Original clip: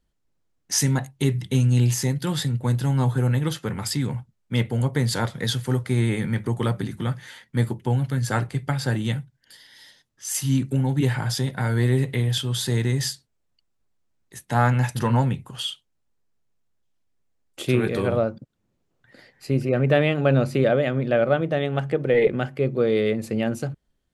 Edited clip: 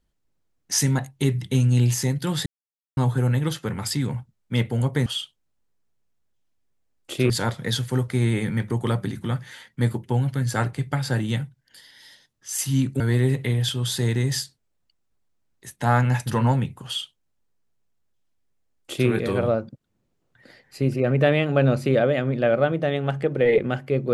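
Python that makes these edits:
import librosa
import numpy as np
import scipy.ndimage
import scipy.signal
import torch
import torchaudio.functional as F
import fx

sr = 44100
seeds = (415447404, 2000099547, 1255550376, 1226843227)

y = fx.edit(x, sr, fx.silence(start_s=2.46, length_s=0.51),
    fx.cut(start_s=10.76, length_s=0.93),
    fx.duplicate(start_s=15.55, length_s=2.24, to_s=5.06), tone=tone)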